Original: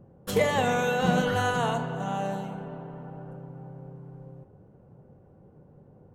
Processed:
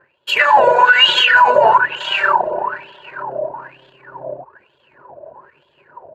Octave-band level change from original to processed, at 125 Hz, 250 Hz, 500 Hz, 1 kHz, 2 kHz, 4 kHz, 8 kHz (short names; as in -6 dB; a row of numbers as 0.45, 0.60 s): -10.5 dB, -7.0 dB, +11.0 dB, +17.0 dB, +19.0 dB, +22.5 dB, n/a